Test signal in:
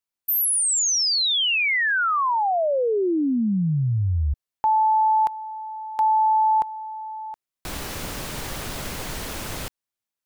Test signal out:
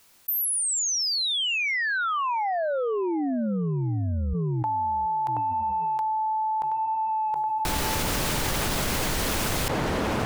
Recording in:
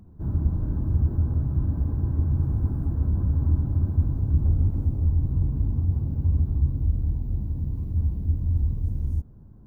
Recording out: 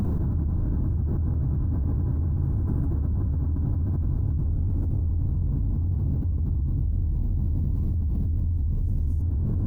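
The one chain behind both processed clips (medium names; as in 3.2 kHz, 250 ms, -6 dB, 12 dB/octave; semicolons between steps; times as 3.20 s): on a send: tape echo 724 ms, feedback 37%, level -8 dB, low-pass 1 kHz; on the sum: level flattener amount 100%; trim -8.5 dB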